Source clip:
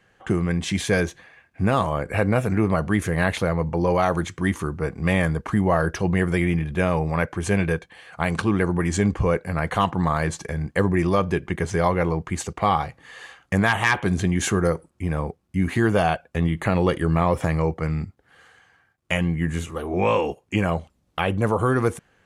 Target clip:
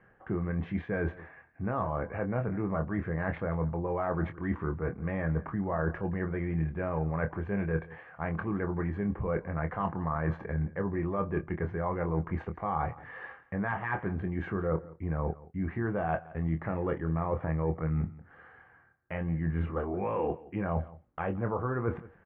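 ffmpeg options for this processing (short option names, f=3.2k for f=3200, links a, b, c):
-filter_complex "[0:a]areverse,acompressor=threshold=-28dB:ratio=10,areverse,lowpass=f=1.8k:w=0.5412,lowpass=f=1.8k:w=1.3066,asplit=2[a][b];[b]adelay=25,volume=-8dB[c];[a][c]amix=inputs=2:normalize=0,aecho=1:1:172:0.106"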